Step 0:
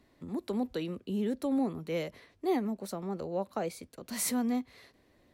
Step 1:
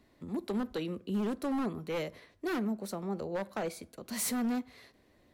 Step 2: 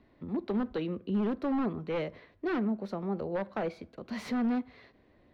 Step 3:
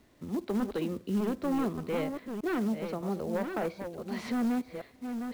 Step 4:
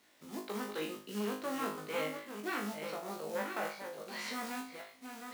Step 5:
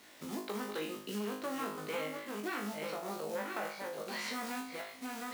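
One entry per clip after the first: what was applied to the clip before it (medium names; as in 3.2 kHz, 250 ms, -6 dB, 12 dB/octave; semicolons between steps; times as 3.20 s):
wavefolder -27 dBFS; reverberation RT60 0.60 s, pre-delay 5 ms, DRR 17.5 dB
distance through air 270 m; trim +3 dB
chunks repeated in reverse 602 ms, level -7 dB; companded quantiser 6-bit
high-pass 1.4 kHz 6 dB/octave; flutter echo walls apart 3.3 m, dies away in 0.4 s; trim +1 dB
compression 2.5:1, threshold -50 dBFS, peak gain reduction 12.5 dB; trim +9.5 dB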